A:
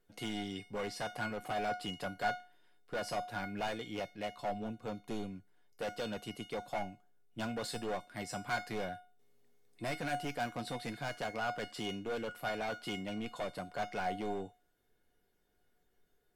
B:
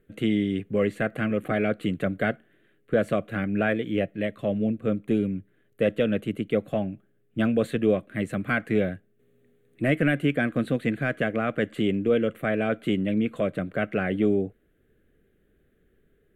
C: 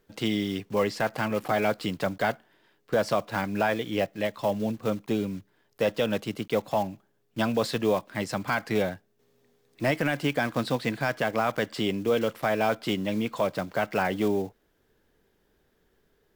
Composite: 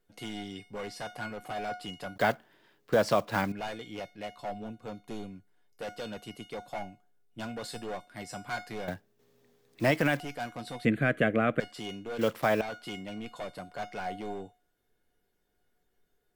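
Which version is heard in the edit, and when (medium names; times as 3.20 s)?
A
2.16–3.52 s: from C
8.88–10.20 s: from C
10.85–11.60 s: from B
12.19–12.61 s: from C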